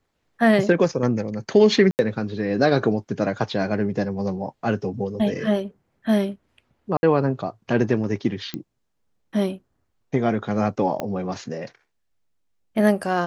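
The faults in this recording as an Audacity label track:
1.910000	1.990000	gap 79 ms
6.970000	7.030000	gap 60 ms
8.540000	8.540000	pop -15 dBFS
11.000000	11.000000	pop -13 dBFS

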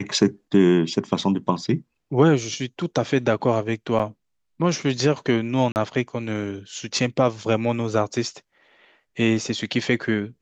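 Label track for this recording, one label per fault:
3.990000	4.000000	gap 5.8 ms
5.720000	5.760000	gap 39 ms

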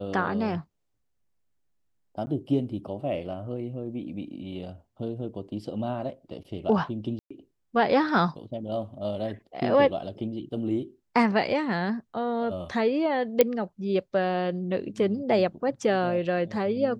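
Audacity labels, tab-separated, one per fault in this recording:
2.260000	2.270000	gap 10 ms
7.190000	7.300000	gap 0.115 s
13.410000	13.410000	pop -5 dBFS

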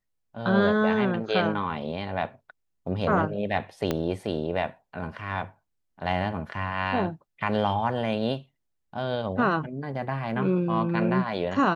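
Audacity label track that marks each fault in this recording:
3.910000	3.910000	pop -12 dBFS

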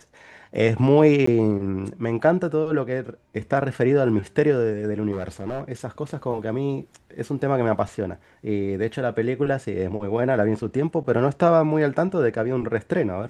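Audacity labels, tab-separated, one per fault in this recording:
1.260000	1.270000	gap 14 ms
5.120000	5.620000	clipped -23 dBFS

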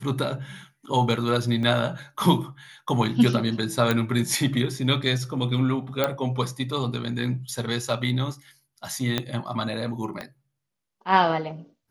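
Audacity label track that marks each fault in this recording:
1.630000	1.630000	gap 2.2 ms
3.910000	3.910000	pop -9 dBFS
6.040000	6.040000	pop -8 dBFS
9.180000	9.180000	pop -9 dBFS
10.210000	10.210000	pop -20 dBFS

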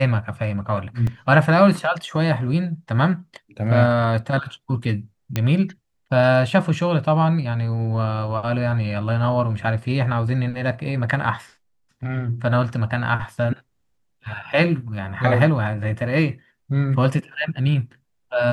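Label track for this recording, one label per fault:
1.070000	1.070000	gap 3.1 ms
5.360000	5.360000	pop -8 dBFS

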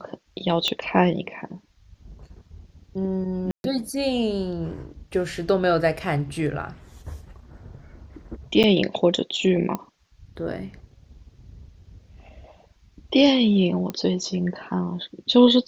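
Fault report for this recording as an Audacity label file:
0.680000	0.680000	pop -9 dBFS
3.510000	3.640000	gap 0.131 s
8.630000	8.640000	gap 8.3 ms
9.750000	9.750000	pop -14 dBFS
13.900000	13.900000	pop -16 dBFS

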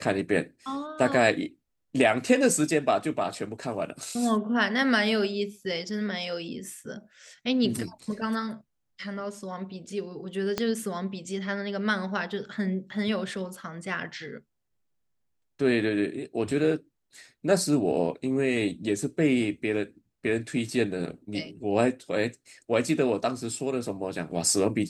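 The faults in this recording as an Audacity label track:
10.580000	10.580000	pop -12 dBFS

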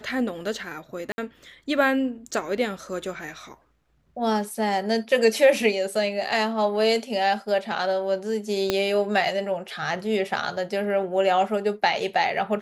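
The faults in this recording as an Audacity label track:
1.120000	1.180000	gap 60 ms
8.700000	8.700000	pop -7 dBFS

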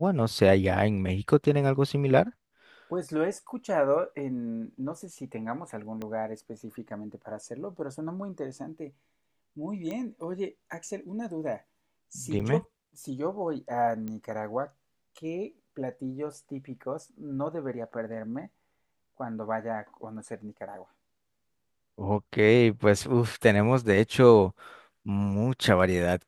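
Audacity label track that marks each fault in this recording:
6.020000	6.020000	pop -23 dBFS
9.910000	9.910000	pop -23 dBFS
12.390000	12.400000	gap 6.7 ms
14.080000	14.080000	pop -24 dBFS

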